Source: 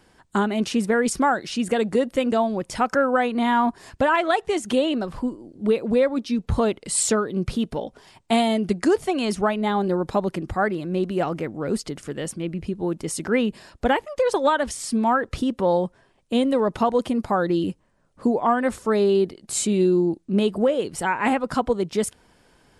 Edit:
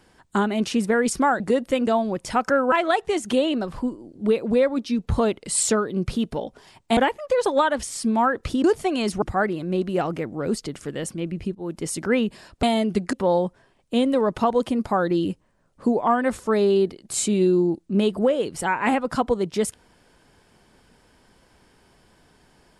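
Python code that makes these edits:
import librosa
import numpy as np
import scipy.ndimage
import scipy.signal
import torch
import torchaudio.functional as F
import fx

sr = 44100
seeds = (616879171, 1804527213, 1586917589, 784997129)

y = fx.edit(x, sr, fx.cut(start_s=1.4, length_s=0.45),
    fx.cut(start_s=3.17, length_s=0.95),
    fx.swap(start_s=8.37, length_s=0.5, other_s=13.85, other_length_s=1.67),
    fx.cut(start_s=9.45, length_s=0.99),
    fx.fade_in_from(start_s=12.77, length_s=0.25, floor_db=-17.0), tone=tone)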